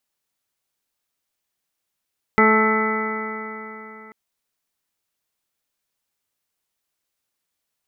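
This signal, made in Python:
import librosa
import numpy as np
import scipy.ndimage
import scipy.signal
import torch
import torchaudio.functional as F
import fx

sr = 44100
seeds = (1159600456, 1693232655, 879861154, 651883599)

y = fx.additive_stiff(sr, length_s=1.74, hz=217.0, level_db=-17.5, upper_db=(0.5, -11, -2.5, -12.5, 1.0, -17.0, -15.5, 1.0, -12), decay_s=3.48, stiffness=0.00064)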